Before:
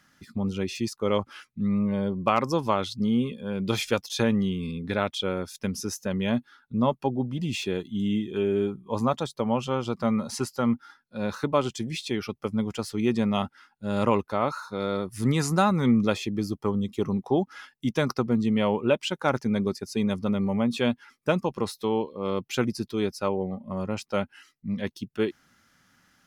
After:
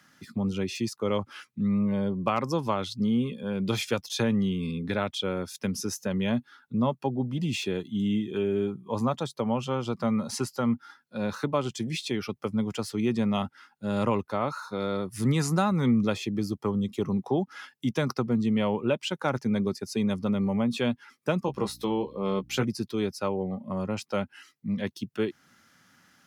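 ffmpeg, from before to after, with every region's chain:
-filter_complex "[0:a]asettb=1/sr,asplit=3[s0][s1][s2];[s0]atrim=end=21.464[s3];[s1]atrim=start=21.46:end=22.63,asetpts=PTS-STARTPTS,afade=t=in:d=0.004:c=qsin,afade=t=out:st=1.166:d=0.004:c=qsin,asplit=2[s4][s5];[s5]adelay=15,volume=0.596[s6];[s4][s6]amix=inputs=2:normalize=0,atrim=end_sample=51597,acompressor=mode=upward:threshold=0.01:ratio=2.5:attack=3.2:release=140:knee=2.83:detection=peak,aeval=exprs='val(0)+0.00316*(sin(2*PI*60*n/s)+sin(2*PI*2*60*n/s)/2+sin(2*PI*3*60*n/s)/3+sin(2*PI*4*60*n/s)/4+sin(2*PI*5*60*n/s)/5)':c=same[s7];[s2]atrim=start=22.626[s8];[s3][s7]acrossfade=d=0.004:c1=hsin:c2=qsin[s9];[s9][s8]acrossfade=d=0.004:c1=qsin:c2=hsin,highpass=100,acrossover=split=160[s10][s11];[s11]acompressor=threshold=0.0158:ratio=1.5[s12];[s10][s12]amix=inputs=2:normalize=0,volume=1.33"

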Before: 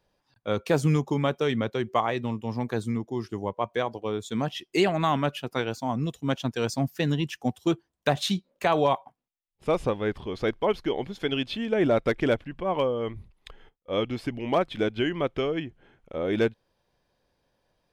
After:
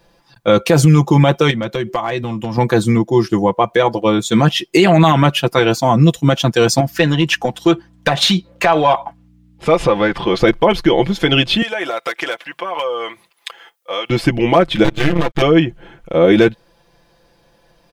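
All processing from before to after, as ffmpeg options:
-filter_complex "[0:a]asettb=1/sr,asplit=3[s0][s1][s2];[s0]atrim=end=1.504[s3];[s1]atrim=start=1.5:end=2.58,asetpts=PTS-STARTPTS,afade=t=in:d=0.004:c=qsin,afade=t=out:st=1.076:d=0.004:c=qsin,bandreject=f=440:w=5.9,acompressor=threshold=0.0224:ratio=8:attack=3.2:release=140:knee=1:detection=peak,asoftclip=type=hard:threshold=0.0422[s4];[s2]atrim=start=2.576[s5];[s3][s4]acrossfade=d=0.004:c1=hsin:c2=qsin[s6];[s6][s5]acrossfade=d=0.004:c1=qsin:c2=hsin,asettb=1/sr,asplit=3[s7][s8][s9];[s7]atrim=end=6.804[s10];[s8]atrim=start=6.8:end=10.38,asetpts=PTS-STARTPTS,afade=t=in:d=0.004:c=qsin,afade=t=out:st=3.576:d=0.004:c=qsin,acompressor=threshold=0.0398:ratio=5:attack=3.2:release=140:knee=1:detection=peak,aeval=exprs='val(0)+0.001*(sin(2*PI*60*n/s)+sin(2*PI*2*60*n/s)/2+sin(2*PI*3*60*n/s)/3+sin(2*PI*4*60*n/s)/4+sin(2*PI*5*60*n/s)/5)':c=same,asplit=2[s11][s12];[s12]highpass=f=720:p=1,volume=3.55,asoftclip=type=tanh:threshold=0.15[s13];[s11][s13]amix=inputs=2:normalize=0,lowpass=f=3000:p=1,volume=0.501[s14];[s9]atrim=start=10.376[s15];[s10][s14]acrossfade=d=0.004:c1=hsin:c2=qsin[s16];[s16][s15]acrossfade=d=0.004:c1=qsin:c2=hsin,asettb=1/sr,asplit=3[s17][s18][s19];[s17]atrim=end=11.624[s20];[s18]atrim=start=11.62:end=14.1,asetpts=PTS-STARTPTS,afade=t=in:d=0.004:c=qsin,afade=t=out:st=2.476:d=0.004:c=qsin,highpass=820,highshelf=f=9200:g=9,acompressor=threshold=0.0158:ratio=4:attack=3.2:release=140:knee=1:detection=peak[s21];[s19]atrim=start=14.096[s22];[s20][s21]acrossfade=d=0.004:c1=hsin:c2=qsin[s23];[s23][s22]acrossfade=d=0.004:c1=qsin:c2=hsin,asettb=1/sr,asplit=3[s24][s25][s26];[s24]atrim=end=14.844[s27];[s25]atrim=start=14.84:end=15.42,asetpts=PTS-STARTPTS,afade=t=in:d=0.004:c=qsin,afade=t=out:st=0.576:d=0.004:c=qsin,aecho=1:1:6.4:0.76,atrim=end_sample=25578,aeval=exprs='max(val(0),0)':c=same,tremolo=f=140:d=0.75[s28];[s26]atrim=start=15.416[s29];[s27][s28]acrossfade=d=0.004:c1=hsin:c2=qsin[s30];[s30][s29]acrossfade=d=0.004:c1=qsin:c2=hsin,aecho=1:1:5.9:0.68,alimiter=level_in=7.5:limit=0.891:release=50:level=0:latency=1,volume=0.891"

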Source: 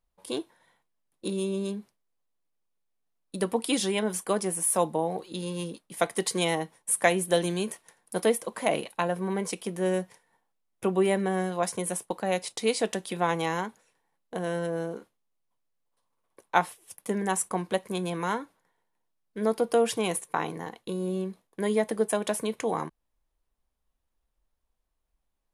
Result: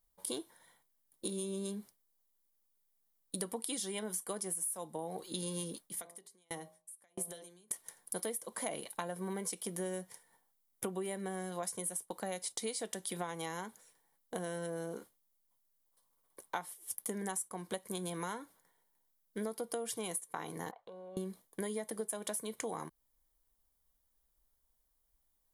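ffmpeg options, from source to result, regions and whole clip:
-filter_complex "[0:a]asettb=1/sr,asplit=3[s0][s1][s2];[s0]atrim=end=5.844[s3];[s1]atrim=start=5.84:end=7.71,asetpts=PTS-STARTPTS,afade=t=in:d=0.004:c=qsin,afade=t=out:st=1.866:d=0.004:c=qsin,bandreject=f=57.09:t=h:w=4,bandreject=f=114.18:t=h:w=4,bandreject=f=171.27:t=h:w=4,bandreject=f=228.36:t=h:w=4,bandreject=f=285.45:t=h:w=4,bandreject=f=342.54:t=h:w=4,bandreject=f=399.63:t=h:w=4,bandreject=f=456.72:t=h:w=4,bandreject=f=513.81:t=h:w=4,bandreject=f=570.9:t=h:w=4,bandreject=f=627.99:t=h:w=4,bandreject=f=685.08:t=h:w=4,bandreject=f=742.17:t=h:w=4,bandreject=f=799.26:t=h:w=4,bandreject=f=856.35:t=h:w=4,bandreject=f=913.44:t=h:w=4,bandreject=f=970.53:t=h:w=4,bandreject=f=1027.62:t=h:w=4,bandreject=f=1084.71:t=h:w=4,bandreject=f=1141.8:t=h:w=4,bandreject=f=1198.89:t=h:w=4,acompressor=threshold=0.0224:ratio=5:attack=3.2:release=140:knee=1:detection=peak,aeval=exprs='val(0)*pow(10,-39*if(lt(mod(1.5*n/s,1),2*abs(1.5)/1000),1-mod(1.5*n/s,1)/(2*abs(1.5)/1000),(mod(1.5*n/s,1)-2*abs(1.5)/1000)/(1-2*abs(1.5)/1000))/20)':c=same[s4];[s2]atrim=start=7.706[s5];[s3][s4]acrossfade=d=0.004:c1=hsin:c2=qsin[s6];[s6][s5]acrossfade=d=0.004:c1=qsin:c2=hsin,asettb=1/sr,asplit=3[s7][s8][s9];[s7]atrim=end=20.714[s10];[s8]atrim=start=20.71:end=21.17,asetpts=PTS-STARTPTS,afade=t=in:d=0.004:c=qsin,afade=t=out:st=0.456:d=0.004:c=qsin,lowpass=1300,lowshelf=f=440:t=q:w=3:g=-14,acompressor=threshold=0.00631:ratio=6:attack=3.2:release=140:knee=1:detection=peak[s11];[s9]atrim=start=21.166[s12];[s10][s11]acrossfade=d=0.004:c1=hsin:c2=qsin[s13];[s13][s12]acrossfade=d=0.004:c1=qsin:c2=hsin,aemphasis=mode=production:type=50fm,bandreject=f=2600:w=6.9,acompressor=threshold=0.0224:ratio=12,volume=0.794"

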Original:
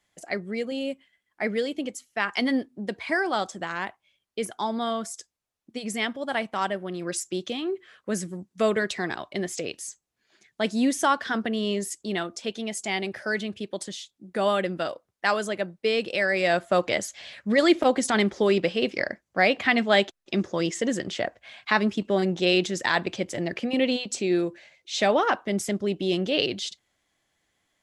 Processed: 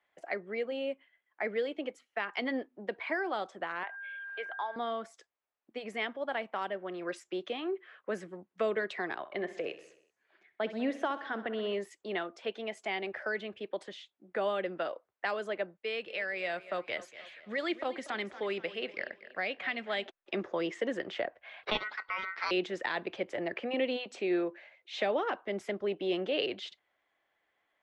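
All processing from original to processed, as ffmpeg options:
-filter_complex "[0:a]asettb=1/sr,asplit=3[s0][s1][s2];[s0]atrim=end=3.834[s3];[s1]atrim=start=3.83:end=4.76,asetpts=PTS-STARTPTS,afade=t=in:d=0.004:c=qsin,afade=t=out:st=0.926:d=0.004:c=qsin,acompressor=mode=upward:threshold=0.0224:ratio=2.5:attack=3.2:release=140:knee=2.83:detection=peak,aeval=exprs='val(0)+0.0112*sin(2*PI*1600*n/s)':c=same,asuperpass=centerf=1500:order=4:qfactor=0.55[s4];[s2]atrim=start=4.756[s5];[s3][s4]acrossfade=d=0.004:c1=hsin:c2=qsin[s6];[s6][s5]acrossfade=d=0.004:c1=qsin:c2=hsin,asettb=1/sr,asplit=3[s7][s8][s9];[s7]atrim=end=9.184[s10];[s8]atrim=start=9.18:end=11.73,asetpts=PTS-STARTPTS,afade=t=in:d=0.004:c=qsin,afade=t=out:st=2.546:d=0.004:c=qsin,lowpass=f=3300:p=1,aecho=1:1:64|128|192|256|320|384:0.178|0.107|0.064|0.0384|0.023|0.0138,atrim=end_sample=112455[s11];[s9]atrim=start=11.726[s12];[s10][s11]acrossfade=d=0.004:c1=hsin:c2=qsin[s13];[s13][s12]acrossfade=d=0.004:c1=qsin:c2=hsin,asettb=1/sr,asplit=3[s14][s15][s16];[s14]atrim=end=15.774[s17];[s15]atrim=start=15.77:end=20.06,asetpts=PTS-STARTPTS,afade=t=in:d=0.004:c=qsin,afade=t=out:st=4.286:d=0.004:c=qsin,equalizer=f=560:w=0.31:g=-9.5,aecho=1:1:238|476|714:0.141|0.0579|0.0237,atrim=end_sample=189189[s18];[s16]atrim=start=20.056[s19];[s17][s18]acrossfade=d=0.004:c1=hsin:c2=qsin[s20];[s20][s19]acrossfade=d=0.004:c1=qsin:c2=hsin,asettb=1/sr,asplit=3[s21][s22][s23];[s21]atrim=end=21.634[s24];[s22]atrim=start=21.63:end=22.51,asetpts=PTS-STARTPTS,afade=t=in:d=0.004:c=qsin,afade=t=out:st=0.876:d=0.004:c=qsin,tiltshelf=f=900:g=-8.5,aeval=exprs='val(0)*sin(2*PI*1700*n/s)':c=same,lowpass=f=4900:w=0.5412,lowpass=f=4900:w=1.3066[s25];[s23]atrim=start=22.506[s26];[s24][s25]acrossfade=d=0.004:c1=hsin:c2=qsin[s27];[s27][s26]acrossfade=d=0.004:c1=qsin:c2=hsin,acrossover=split=380 2900:gain=0.126 1 0.0708[s28][s29][s30];[s28][s29][s30]amix=inputs=3:normalize=0,acrossover=split=440|3000[s31][s32][s33];[s32]acompressor=threshold=0.02:ratio=6[s34];[s31][s34][s33]amix=inputs=3:normalize=0,highshelf=f=8800:g=-6"

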